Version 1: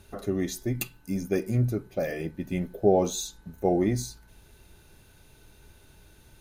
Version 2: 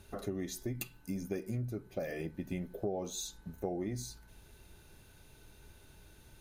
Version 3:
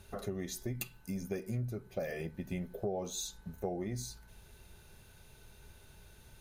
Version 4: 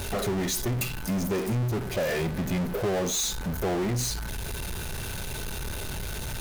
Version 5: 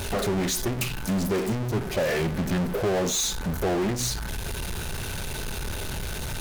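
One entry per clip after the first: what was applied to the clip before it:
downward compressor 4 to 1, threshold −32 dBFS, peak gain reduction 14 dB; level −3 dB
parametric band 300 Hz −13.5 dB 0.21 octaves; level +1 dB
power curve on the samples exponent 0.35
mains-hum notches 60/120 Hz; highs frequency-modulated by the lows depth 0.4 ms; level +2.5 dB

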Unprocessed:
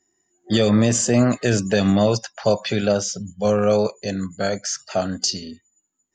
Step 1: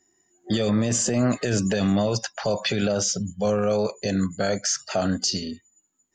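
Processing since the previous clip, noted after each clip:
brickwall limiter −17 dBFS, peak gain reduction 11 dB
level +3 dB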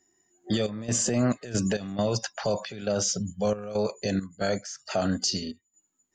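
gate pattern "xxx.xx.x.xxx." 68 BPM −12 dB
level −2.5 dB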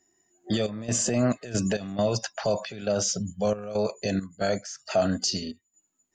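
hollow resonant body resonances 650/2,600 Hz, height 6 dB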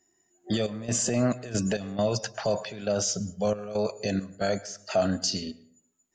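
dense smooth reverb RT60 0.68 s, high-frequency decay 0.5×, pre-delay 95 ms, DRR 19 dB
level −1 dB

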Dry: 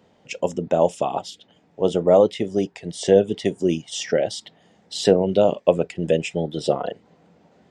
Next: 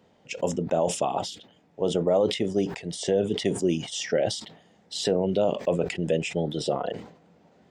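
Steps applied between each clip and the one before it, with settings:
brickwall limiter −10.5 dBFS, peak gain reduction 9 dB
level that may fall only so fast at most 100 dB per second
level −3 dB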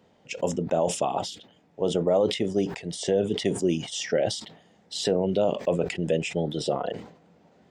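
no processing that can be heard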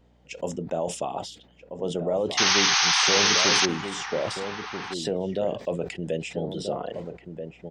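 sound drawn into the spectrogram noise, 0:02.37–0:03.66, 720–6,500 Hz −17 dBFS
slap from a distant wall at 220 metres, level −7 dB
mains hum 60 Hz, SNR 34 dB
level −4 dB

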